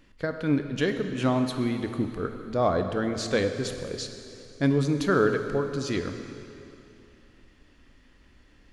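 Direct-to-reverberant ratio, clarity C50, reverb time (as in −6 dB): 6.5 dB, 7.5 dB, 2.9 s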